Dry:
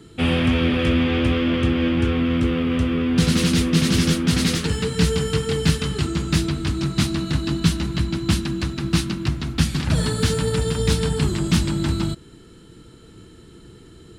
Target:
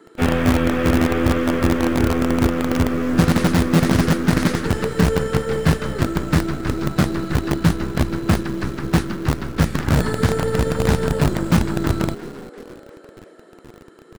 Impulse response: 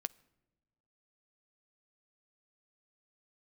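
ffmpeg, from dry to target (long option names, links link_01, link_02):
-filter_complex "[0:a]highshelf=frequency=2200:width_type=q:width=1.5:gain=-9,asplit=6[link_01][link_02][link_03][link_04][link_05][link_06];[link_02]adelay=347,afreqshift=77,volume=-14.5dB[link_07];[link_03]adelay=694,afreqshift=154,volume=-20.3dB[link_08];[link_04]adelay=1041,afreqshift=231,volume=-26.2dB[link_09];[link_05]adelay=1388,afreqshift=308,volume=-32dB[link_10];[link_06]adelay=1735,afreqshift=385,volume=-37.9dB[link_11];[link_01][link_07][link_08][link_09][link_10][link_11]amix=inputs=6:normalize=0,asplit=2[link_12][link_13];[link_13]asetrate=52444,aresample=44100,atempo=0.840896,volume=-17dB[link_14];[link_12][link_14]amix=inputs=2:normalize=0,acrossover=split=270|2100[link_15][link_16][link_17];[link_15]acrusher=bits=4:dc=4:mix=0:aa=0.000001[link_18];[link_18][link_16][link_17]amix=inputs=3:normalize=0,volume=2dB"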